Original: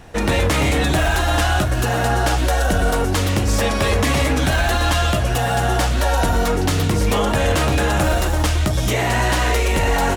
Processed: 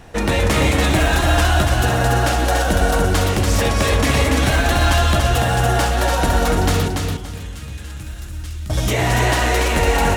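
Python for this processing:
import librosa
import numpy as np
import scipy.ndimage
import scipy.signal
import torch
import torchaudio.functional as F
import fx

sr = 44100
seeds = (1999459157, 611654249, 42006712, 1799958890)

y = fx.tone_stack(x, sr, knobs='6-0-2', at=(6.88, 8.7))
y = fx.echo_feedback(y, sr, ms=287, feedback_pct=26, wet_db=-4)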